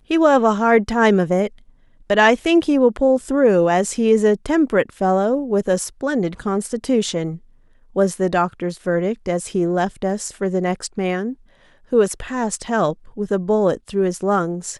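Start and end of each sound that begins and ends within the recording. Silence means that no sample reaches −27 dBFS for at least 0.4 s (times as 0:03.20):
0:02.10–0:07.36
0:07.96–0:11.33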